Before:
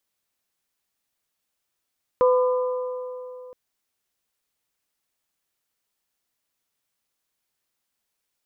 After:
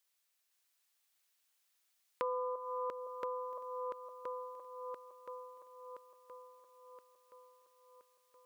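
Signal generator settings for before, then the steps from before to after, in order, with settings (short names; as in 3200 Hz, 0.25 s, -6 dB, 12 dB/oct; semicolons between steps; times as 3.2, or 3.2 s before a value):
metal hit bell, length 1.32 s, lowest mode 503 Hz, modes 3, decay 3.07 s, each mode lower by 7.5 dB, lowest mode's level -14 dB
regenerating reverse delay 0.511 s, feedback 70%, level -3 dB; compressor 2.5:1, threshold -30 dBFS; HPF 1500 Hz 6 dB/oct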